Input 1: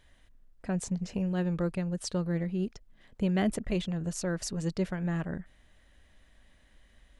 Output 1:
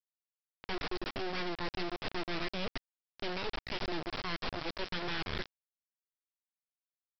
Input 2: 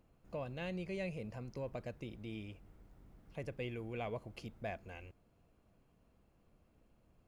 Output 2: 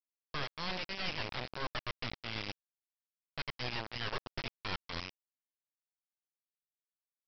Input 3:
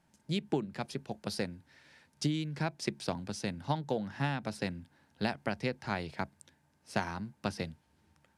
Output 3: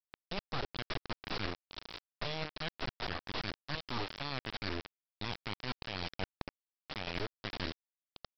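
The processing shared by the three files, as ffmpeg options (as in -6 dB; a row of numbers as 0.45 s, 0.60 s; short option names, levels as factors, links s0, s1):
-af "tiltshelf=f=730:g=-9,acontrast=50,alimiter=limit=0.141:level=0:latency=1:release=61,areverse,acompressor=threshold=0.01:ratio=10,areverse,aeval=exprs='abs(val(0))':c=same,aresample=11025,acrusher=bits=4:dc=4:mix=0:aa=0.000001,aresample=44100,volume=1.88"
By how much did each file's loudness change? -6.0 LU, +4.5 LU, -4.0 LU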